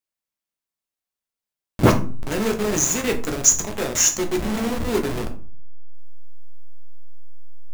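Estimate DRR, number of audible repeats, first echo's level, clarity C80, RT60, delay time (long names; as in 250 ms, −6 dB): 3.5 dB, no echo audible, no echo audible, 17.0 dB, 0.45 s, no echo audible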